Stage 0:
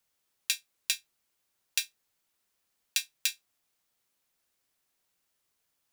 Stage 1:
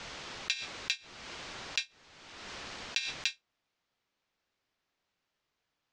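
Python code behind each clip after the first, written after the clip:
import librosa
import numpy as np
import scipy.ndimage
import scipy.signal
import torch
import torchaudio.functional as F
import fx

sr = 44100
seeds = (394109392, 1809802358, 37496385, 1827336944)

y = scipy.signal.sosfilt(scipy.signal.bessel(8, 3800.0, 'lowpass', norm='mag', fs=sr, output='sos'), x)
y = fx.pre_swell(y, sr, db_per_s=34.0)
y = F.gain(torch.from_numpy(y), 1.5).numpy()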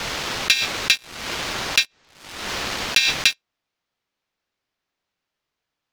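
y = fx.leveller(x, sr, passes=3)
y = F.gain(torch.from_numpy(y), 7.0).numpy()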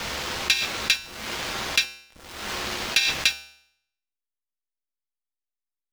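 y = fx.delta_hold(x, sr, step_db=-36.5)
y = fx.comb_fb(y, sr, f0_hz=72.0, decay_s=0.68, harmonics='odd', damping=0.0, mix_pct=70)
y = F.gain(torch.from_numpy(y), 5.5).numpy()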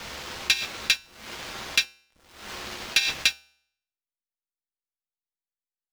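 y = fx.upward_expand(x, sr, threshold_db=-43.0, expansion=1.5)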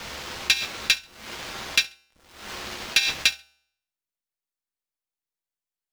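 y = fx.echo_feedback(x, sr, ms=68, feedback_pct=29, wet_db=-22.5)
y = F.gain(torch.from_numpy(y), 1.5).numpy()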